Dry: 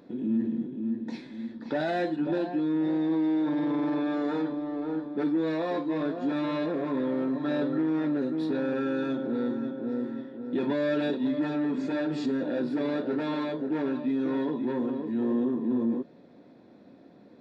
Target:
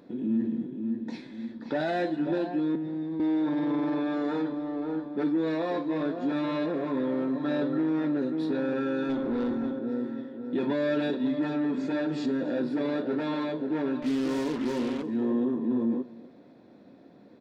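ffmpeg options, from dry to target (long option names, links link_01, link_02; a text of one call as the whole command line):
ffmpeg -i in.wav -filter_complex "[0:a]asettb=1/sr,asplit=3[link_01][link_02][link_03];[link_01]atrim=end=2.754[link_04];[link_02]atrim=start=2.75:end=3.2,asetpts=PTS-STARTPTS,afade=type=in:duration=0.004:curve=qsin,afade=type=out:start_time=0.446:duration=0.004:curve=qsin,acrossover=split=250[link_05][link_06];[link_06]acompressor=threshold=-39dB:ratio=6[link_07];[link_05][link_07]amix=inputs=2:normalize=0[link_08];[link_03]atrim=start=3.196[link_09];[link_04][link_08]acrossfade=duration=0.004:curve1=hsin:curve2=qsin[link_10];[link_10][link_09]acrossfade=duration=0.004:curve1=qsin:curve2=hsin,asettb=1/sr,asplit=3[link_11][link_12][link_13];[link_11]atrim=end=9.094[link_14];[link_12]atrim=start=9.09:end=9.79,asetpts=PTS-STARTPTS,afade=type=in:duration=0.004:curve=qsin,afade=type=out:start_time=0.696:duration=0.004:curve=qsin,aeval=exprs='0.0944*(cos(1*acos(clip(val(0)/0.0944,-1,1)))-cos(1*PI/2))+0.00944*(cos(5*acos(clip(val(0)/0.0944,-1,1)))-cos(5*PI/2))':channel_layout=same[link_15];[link_13]atrim=start=9.786[link_16];[link_14][link_15]acrossfade=duration=0.004:curve1=hsin:curve2=qsin[link_17];[link_17][link_16]acrossfade=duration=0.004:curve1=qsin:curve2=hsin,asettb=1/sr,asplit=3[link_18][link_19][link_20];[link_18]atrim=end=14.024[link_21];[link_19]atrim=start=14.02:end=15.03,asetpts=PTS-STARTPTS,afade=type=in:duration=0.004:curve=qsin,afade=type=out:start_time=1.006:duration=0.004:curve=qsin,acrusher=bits=5:mix=0:aa=0.5[link_22];[link_20]atrim=start=15.026[link_23];[link_21][link_22]acrossfade=duration=0.004:curve1=hsin:curve2=qsin[link_24];[link_24][link_23]acrossfade=duration=0.004:curve1=qsin:curve2=hsin,aecho=1:1:279:0.1" out.wav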